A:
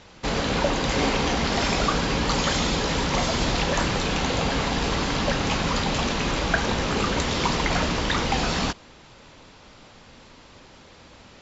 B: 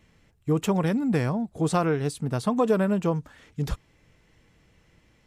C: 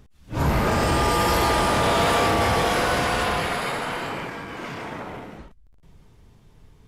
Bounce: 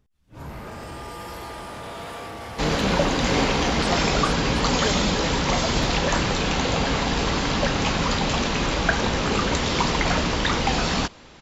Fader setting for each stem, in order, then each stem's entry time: +1.5, −7.0, −15.5 decibels; 2.35, 2.15, 0.00 seconds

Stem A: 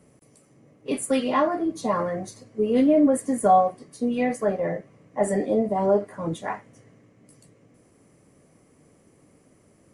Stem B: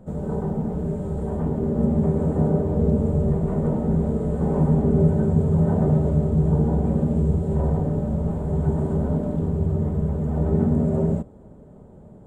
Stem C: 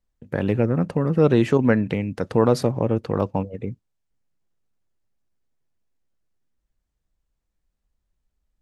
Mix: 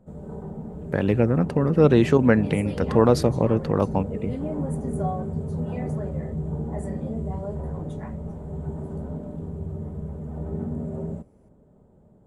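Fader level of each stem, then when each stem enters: −14.5, −10.0, +0.5 decibels; 1.55, 0.00, 0.60 seconds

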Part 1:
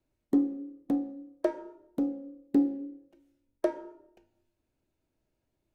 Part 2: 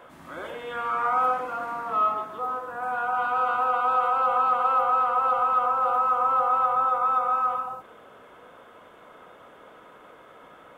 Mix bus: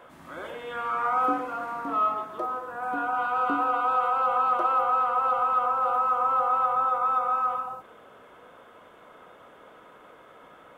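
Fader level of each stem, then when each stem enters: −9.0, −1.5 decibels; 0.95, 0.00 seconds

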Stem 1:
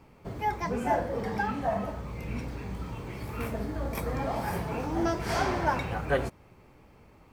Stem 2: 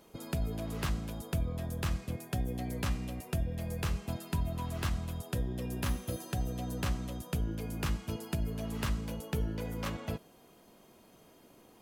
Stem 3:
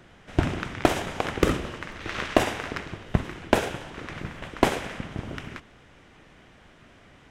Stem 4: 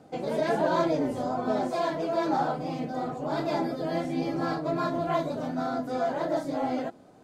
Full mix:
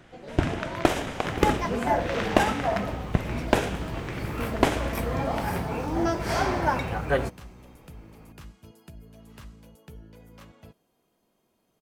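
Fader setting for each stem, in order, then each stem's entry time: +2.5, −12.5, −1.0, −11.5 decibels; 1.00, 0.55, 0.00, 0.00 seconds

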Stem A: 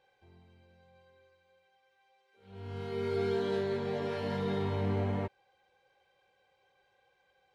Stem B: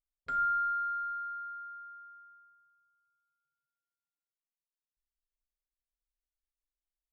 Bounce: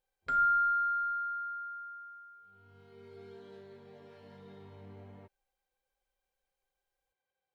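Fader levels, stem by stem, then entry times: −19.5, +3.0 decibels; 0.00, 0.00 seconds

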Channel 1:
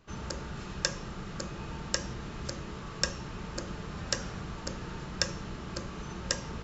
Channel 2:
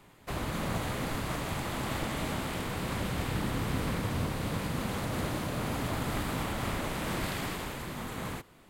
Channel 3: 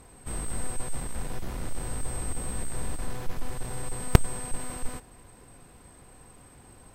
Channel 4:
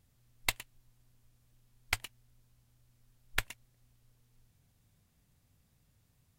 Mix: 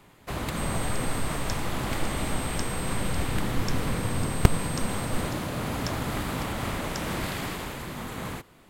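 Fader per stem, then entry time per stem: −8.5, +2.5, −1.5, −9.0 decibels; 0.65, 0.00, 0.30, 0.00 seconds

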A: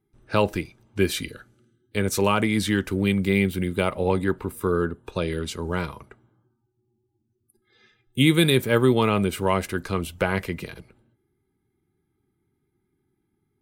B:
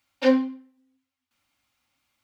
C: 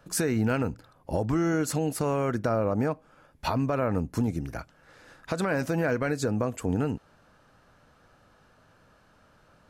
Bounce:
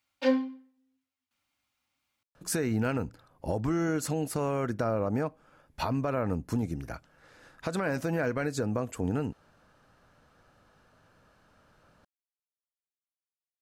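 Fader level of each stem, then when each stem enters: muted, −6.0 dB, −3.0 dB; muted, 0.00 s, 2.35 s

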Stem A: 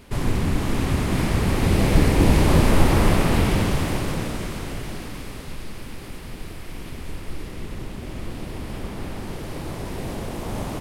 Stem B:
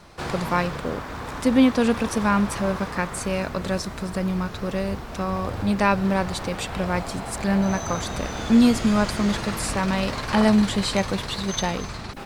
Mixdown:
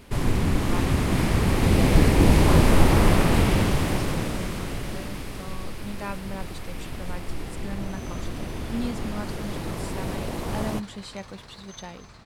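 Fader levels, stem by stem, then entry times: −0.5, −14.5 decibels; 0.00, 0.20 seconds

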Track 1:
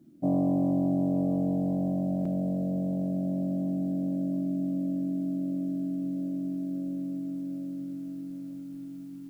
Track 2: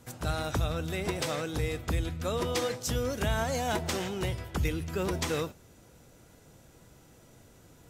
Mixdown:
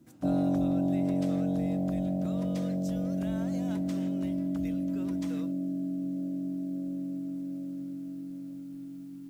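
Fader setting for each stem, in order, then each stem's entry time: −1.5, −16.0 decibels; 0.00, 0.00 seconds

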